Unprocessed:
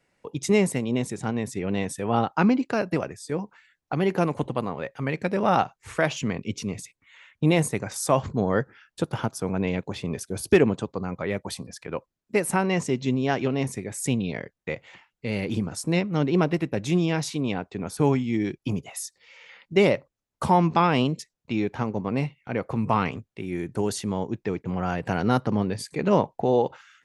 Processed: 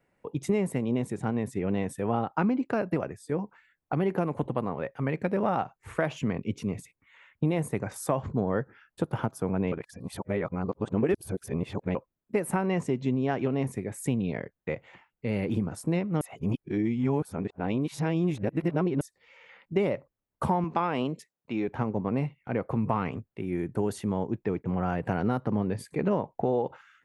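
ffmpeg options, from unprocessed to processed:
-filter_complex "[0:a]asettb=1/sr,asplit=3[a][b][c];[a]atrim=end=20.644[d];[b]atrim=start=20.64:end=21.68,asetpts=PTS-STARTPTS,afade=t=in:d=0.004:c=qsin,afade=t=out:st=1.036:d=0.004:c=qsin,highpass=f=330:p=1[e];[c]atrim=start=21.676[f];[d][e]acrossfade=d=0.004:c1=hsin:c2=qsin[g];[g][f]acrossfade=d=0.004:c1=qsin:c2=hsin,asplit=5[h][i][j][k][l];[h]atrim=end=9.722[m];[i]atrim=start=9.718:end=11.952,asetpts=PTS-STARTPTS,areverse[n];[j]atrim=start=11.948:end=16.212[o];[k]atrim=start=16.208:end=19.012,asetpts=PTS-STARTPTS,areverse[p];[l]atrim=start=19.008[q];[m][n]acrossfade=d=0.004:c1=hsin:c2=hsin[r];[r][o]acrossfade=d=0.004:c1=hsin:c2=hsin[s];[s][p]acrossfade=d=0.004:c1=hsin:c2=hsin[t];[t][q]acrossfade=d=0.004:c1=hsin:c2=hsin,equalizer=f=5.5k:w=0.6:g=-13.5,acompressor=threshold=-22dB:ratio=6"

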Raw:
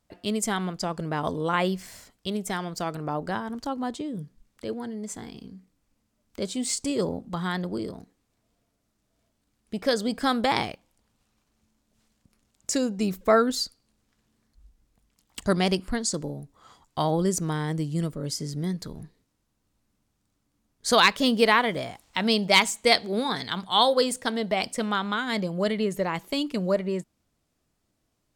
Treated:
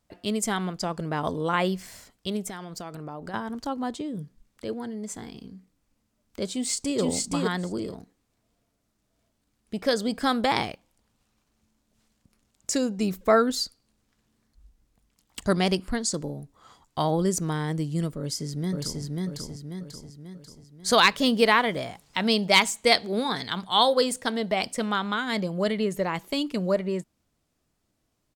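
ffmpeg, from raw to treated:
-filter_complex "[0:a]asettb=1/sr,asplit=3[a][b][c];[a]atrim=end=2.484[d];[b]atrim=start=2.48:end=3.34,asetpts=PTS-STARTPTS,afade=t=in:d=0.004:c=qsin,afade=t=out:st=0.856:d=0.004:c=qsin,acompressor=threshold=-33dB:ratio=6:attack=3.2:release=140:knee=1:detection=peak[e];[c]atrim=start=3.336[f];[d][e]acrossfade=d=0.004:c1=hsin:c2=qsin[g];[g][f]acrossfade=d=0.004:c1=qsin:c2=hsin,asplit=2[h][i];[i]afade=t=in:st=6.51:d=0.01,afade=t=out:st=7:d=0.01,aecho=0:1:470|940:0.891251|0.0891251[j];[h][j]amix=inputs=2:normalize=0,asplit=2[k][l];[l]afade=t=in:st=18.18:d=0.01,afade=t=out:st=19.02:d=0.01,aecho=0:1:540|1080|1620|2160|2700|3240|3780:0.841395|0.420698|0.210349|0.105174|0.0525872|0.0262936|0.0131468[m];[k][m]amix=inputs=2:normalize=0"

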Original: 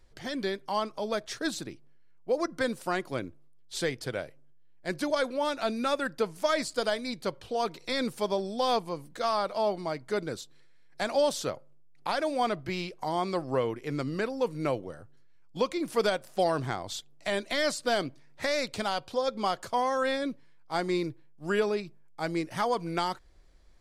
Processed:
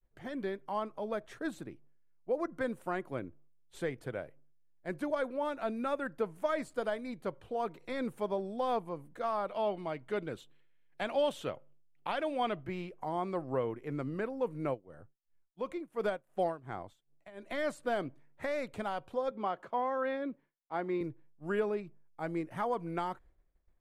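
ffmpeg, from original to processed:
-filter_complex "[0:a]asettb=1/sr,asplit=3[a][b][c];[a]atrim=end=9.484[d];[b]atrim=start=9.48:end=12.64,asetpts=PTS-STARTPTS,afade=t=in:d=0.004:c=qsin,afade=t=out:st=3.156:d=0.004:c=qsin,equalizer=f=3k:w=1.9:g=12.5[e];[c]atrim=start=12.636[f];[d][e]acrossfade=d=0.004:c1=hsin:c2=qsin[g];[g][f]acrossfade=d=0.004:c1=qsin:c2=hsin,asplit=3[h][i][j];[h]afade=t=out:st=14.73:d=0.02[k];[i]tremolo=f=2.8:d=0.9,afade=t=in:st=14.73:d=0.02,afade=t=out:st=17.5:d=0.02[l];[j]afade=t=in:st=17.5:d=0.02[m];[k][l][m]amix=inputs=3:normalize=0,asettb=1/sr,asplit=3[n][o][p];[n]atrim=end=19.314[q];[o]atrim=start=19.31:end=21.01,asetpts=PTS-STARTPTS,afade=t=in:d=0.004:c=qsin,afade=t=out:st=1.696:d=0.004:c=qsin,acrossover=split=150 4700:gain=0.0708 1 0.141[r][s][t];[r][s][t]amix=inputs=3:normalize=0[u];[p]atrim=start=21.006[v];[q][u]acrossfade=d=0.004:c1=hsin:c2=qsin[w];[w][v]acrossfade=d=0.004:c1=qsin:c2=hsin,equalizer=f=4.9k:t=o:w=1:g=-14.5,agate=range=-33dB:threshold=-49dB:ratio=3:detection=peak,highshelf=f=3.5k:g=-7.5,volume=-4.5dB"

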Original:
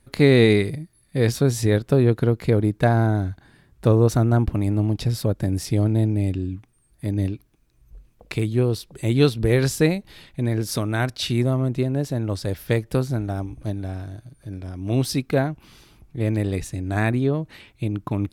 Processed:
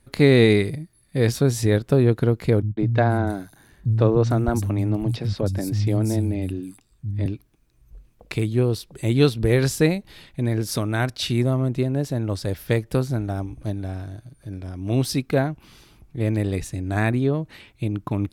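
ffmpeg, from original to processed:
-filter_complex "[0:a]asettb=1/sr,asplit=3[a][b][c];[a]atrim=end=2.624[d];[b]atrim=start=2.62:end=7.26,asetpts=PTS-STARTPTS,afade=t=in:d=0.004:c=qsin,afade=t=out:st=4.636:d=0.004:c=qsin,acrossover=split=170|5500[e][f][g];[f]adelay=150[h];[g]adelay=470[i];[e][h][i]amix=inputs=3:normalize=0,atrim=end_sample=204624[j];[c]atrim=start=7.256[k];[d][j]acrossfade=d=0.004:c1=hsin:c2=qsin[l];[l][k]acrossfade=d=0.004:c1=qsin:c2=hsin"

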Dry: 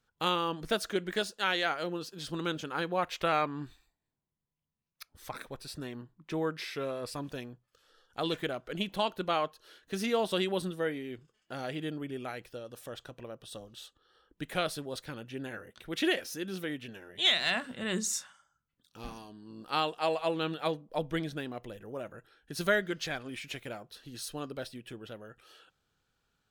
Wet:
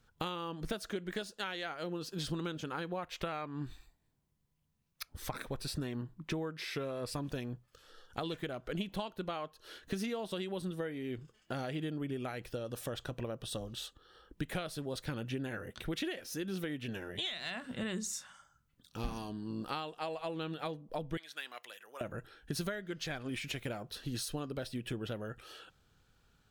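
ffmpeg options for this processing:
-filter_complex "[0:a]asettb=1/sr,asplit=3[a][b][c];[a]atrim=end=21.174[d];[b]atrim=start=21.17:end=22.01,asetpts=PTS-STARTPTS,afade=t=in:d=0.004:c=qsin,afade=t=out:st=0.836:d=0.004:c=qsin,highpass=1.5k[e];[c]atrim=start=22.006[f];[d][e]acrossfade=d=0.004:c1=hsin:c2=qsin[g];[g][f]acrossfade=d=0.004:c1=qsin:c2=hsin,acompressor=threshold=-42dB:ratio=10,lowshelf=f=190:g=8,volume=5.5dB"

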